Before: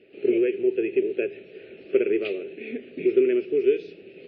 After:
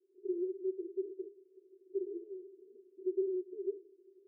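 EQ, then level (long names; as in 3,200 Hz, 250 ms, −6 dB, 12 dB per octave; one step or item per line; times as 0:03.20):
flat-topped band-pass 370 Hz, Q 6.9
first difference
spectral tilt −5.5 dB per octave
+4.5 dB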